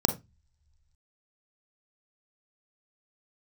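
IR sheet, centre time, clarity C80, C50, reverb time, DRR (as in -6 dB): 10 ms, 20.0 dB, 11.5 dB, no single decay rate, 6.5 dB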